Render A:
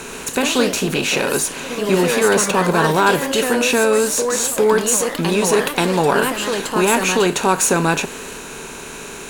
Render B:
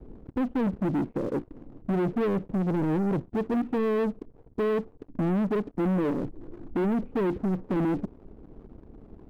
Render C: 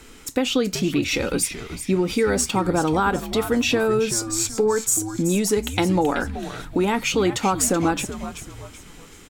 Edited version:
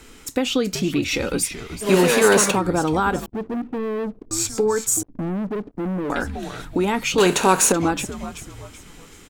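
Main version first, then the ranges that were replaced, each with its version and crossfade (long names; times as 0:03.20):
C
0:01.85–0:02.54: punch in from A, crossfade 0.10 s
0:03.26–0:04.31: punch in from B
0:05.03–0:06.10: punch in from B
0:07.18–0:07.72: punch in from A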